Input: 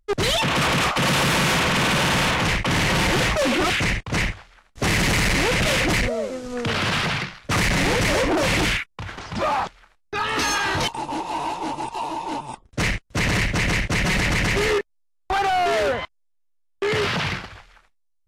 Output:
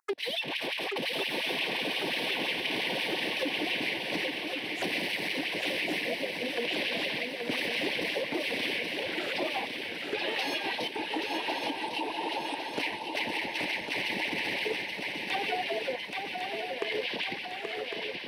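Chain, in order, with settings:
phaser swept by the level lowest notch 530 Hz, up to 1,300 Hz, full sweep at −28.5 dBFS
in parallel at −1.5 dB: output level in coarse steps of 14 dB
on the sum: auto-filter high-pass sine 5.7 Hz 280–2,700 Hz
downward compressor 6 to 1, threshold −32 dBFS, peak gain reduction 18.5 dB
feedback echo with a long and a short gap by turns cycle 1,104 ms, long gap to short 3 to 1, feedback 60%, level −5 dB

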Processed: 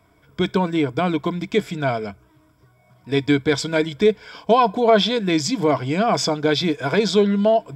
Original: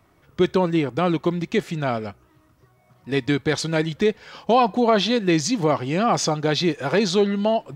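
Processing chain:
EQ curve with evenly spaced ripples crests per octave 1.7, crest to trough 10 dB

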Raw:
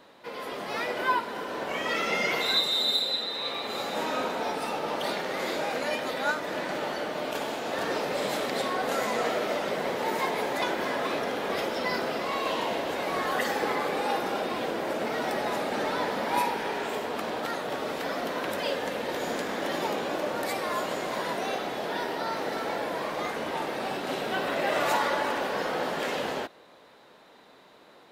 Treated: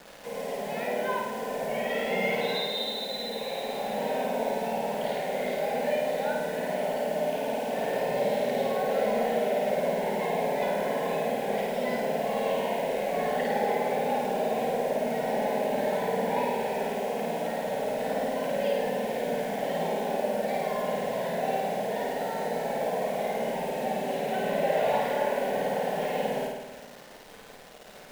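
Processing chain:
low-pass filter 2,000 Hz 12 dB per octave
in parallel at +1 dB: downward compressor 16 to 1, threshold −44 dBFS, peak gain reduction 23.5 dB
on the sum: phaser with its sweep stopped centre 330 Hz, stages 6
bit reduction 8 bits
flutter between parallel walls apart 9.1 metres, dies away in 1.1 s
on a send at −12 dB: convolution reverb RT60 0.20 s, pre-delay 3 ms

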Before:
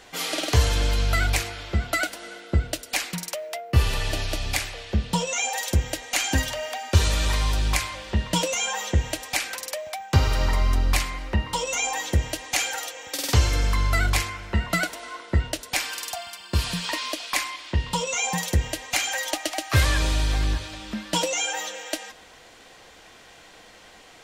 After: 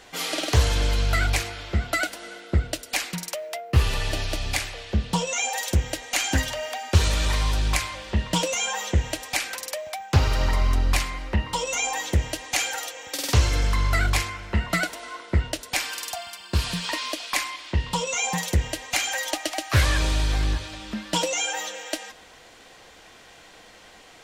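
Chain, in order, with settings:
highs frequency-modulated by the lows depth 0.31 ms

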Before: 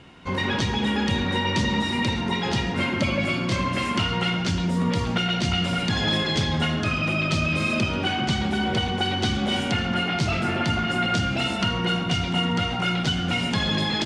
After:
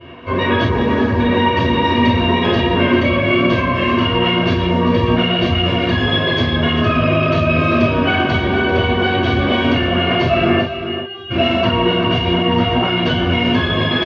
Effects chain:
0:00.63–0:01.19: running median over 15 samples
low-pass filter 2,800 Hz 12 dB per octave
notch filter 1,400 Hz, Q 20
comb filter 1.8 ms, depth 51%
brickwall limiter −19 dBFS, peak gain reduction 8.5 dB
0:10.60–0:11.30: stiff-string resonator 390 Hz, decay 0.26 s, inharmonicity 0.002
single-tap delay 392 ms −10.5 dB
convolution reverb, pre-delay 3 ms, DRR −18 dB
level −6 dB

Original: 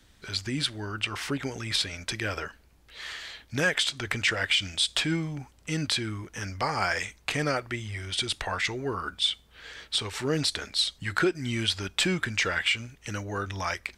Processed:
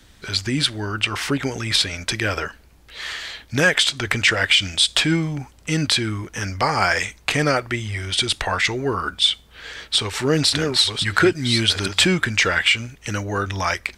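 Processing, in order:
0:09.80–0:12.05: delay that plays each chunk backwards 686 ms, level −5 dB
level +8.5 dB

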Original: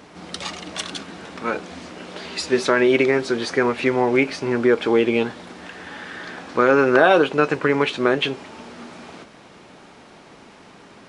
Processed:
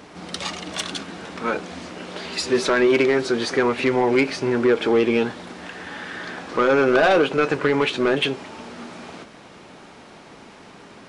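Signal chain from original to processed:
soft clipping −12 dBFS, distortion −13 dB
echo ahead of the sound 56 ms −17 dB
level +1.5 dB

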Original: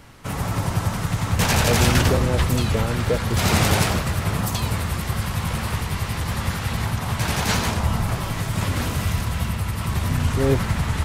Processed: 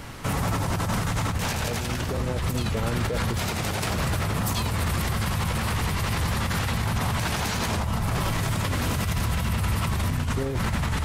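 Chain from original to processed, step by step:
compressor whose output falls as the input rises −26 dBFS, ratio −1
brickwall limiter −21 dBFS, peak gain reduction 9 dB
level +4 dB

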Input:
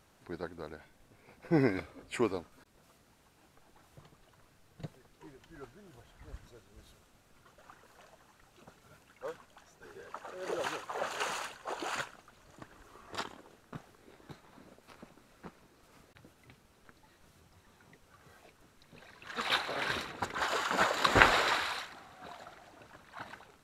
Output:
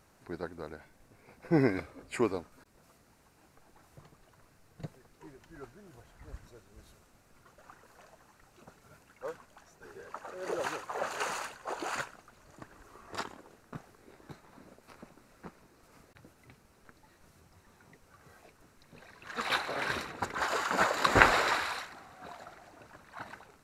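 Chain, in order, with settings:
parametric band 3,300 Hz −6.5 dB 0.48 octaves
level +1.5 dB

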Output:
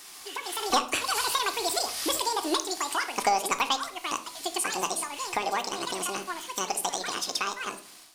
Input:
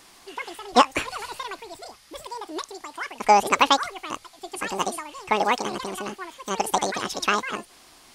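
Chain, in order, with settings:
source passing by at 0:01.85, 13 m/s, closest 7 metres
spectral tilt +2.5 dB per octave
downward compressor 3 to 1, threshold −50 dBFS, peak gain reduction 24 dB
leveller curve on the samples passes 1
on a send at −8.5 dB: convolution reverb RT60 0.60 s, pre-delay 3 ms
on the sum: automatic gain control gain up to 10.5 dB
dynamic equaliser 2,000 Hz, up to −5 dB, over −50 dBFS, Q 3
level +7 dB

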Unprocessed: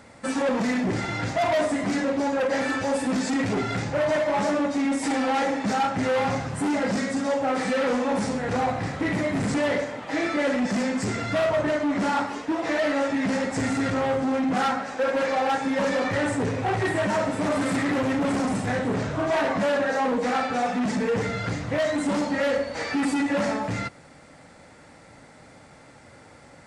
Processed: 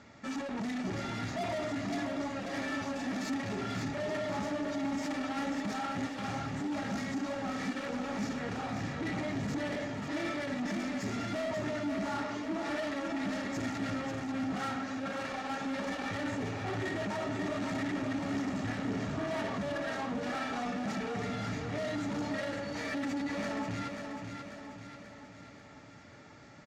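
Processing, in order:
elliptic low-pass filter 6,900 Hz
parametric band 770 Hz −7 dB 0.21 octaves
soft clipping −29 dBFS, distortion −9 dB
notch comb filter 510 Hz
on a send: repeating echo 538 ms, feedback 54%, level −6 dB
on the sum: level −3.5 dB

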